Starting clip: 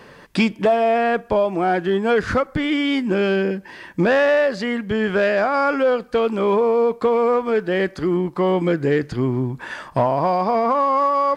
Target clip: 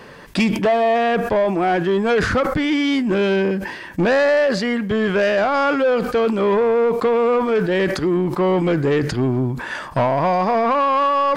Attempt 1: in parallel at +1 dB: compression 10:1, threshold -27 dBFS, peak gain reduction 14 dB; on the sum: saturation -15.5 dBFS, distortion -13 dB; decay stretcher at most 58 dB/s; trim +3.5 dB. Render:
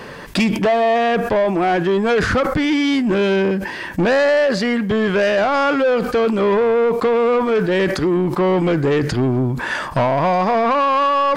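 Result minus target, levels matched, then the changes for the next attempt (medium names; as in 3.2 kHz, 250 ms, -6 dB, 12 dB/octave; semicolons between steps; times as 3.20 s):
compression: peak gain reduction +14 dB
remove: compression 10:1, threshold -27 dBFS, peak gain reduction 14 dB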